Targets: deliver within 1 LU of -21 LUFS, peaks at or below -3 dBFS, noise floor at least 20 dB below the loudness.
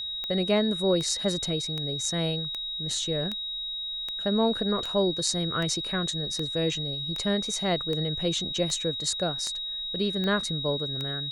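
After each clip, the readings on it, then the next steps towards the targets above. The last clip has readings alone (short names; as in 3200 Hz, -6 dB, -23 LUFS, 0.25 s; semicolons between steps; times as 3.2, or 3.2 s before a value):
clicks 15; steady tone 3800 Hz; tone level -31 dBFS; loudness -27.5 LUFS; peak -8.5 dBFS; loudness target -21.0 LUFS
-> de-click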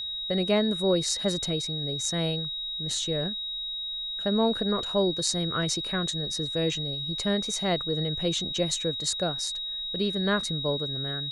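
clicks 0; steady tone 3800 Hz; tone level -31 dBFS
-> notch 3800 Hz, Q 30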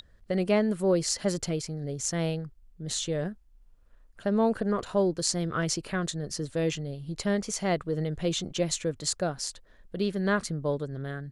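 steady tone none; loudness -29.5 LUFS; peak -8.5 dBFS; loudness target -21.0 LUFS
-> gain +8.5 dB; limiter -3 dBFS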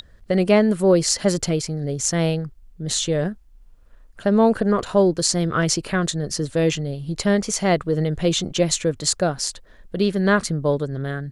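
loudness -21.0 LUFS; peak -3.0 dBFS; noise floor -50 dBFS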